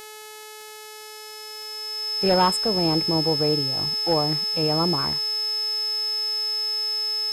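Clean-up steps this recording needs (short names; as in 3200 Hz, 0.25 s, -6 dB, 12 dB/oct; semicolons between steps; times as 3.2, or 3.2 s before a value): de-click; de-hum 429.1 Hz, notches 31; notch 5200 Hz, Q 30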